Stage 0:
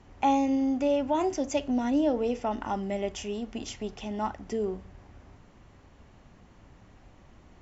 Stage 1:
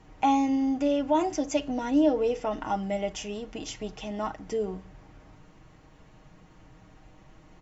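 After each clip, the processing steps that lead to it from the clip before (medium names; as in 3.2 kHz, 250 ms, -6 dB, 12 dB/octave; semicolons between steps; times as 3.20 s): comb 6.4 ms, depth 61%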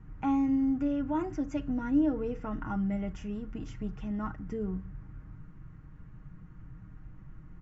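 FFT filter 150 Hz 0 dB, 690 Hz -23 dB, 1.4 kHz -8 dB, 3.5 kHz -27 dB; trim +7.5 dB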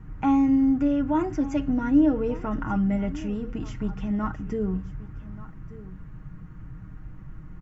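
delay 1183 ms -18 dB; trim +7 dB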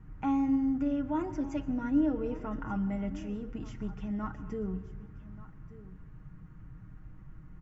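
reverberation RT60 1.2 s, pre-delay 108 ms, DRR 15.5 dB; trim -8 dB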